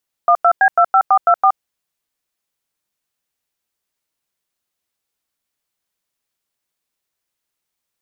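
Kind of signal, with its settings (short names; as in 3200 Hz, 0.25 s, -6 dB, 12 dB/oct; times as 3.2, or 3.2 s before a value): DTMF "12B25424", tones 71 ms, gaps 94 ms, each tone -10.5 dBFS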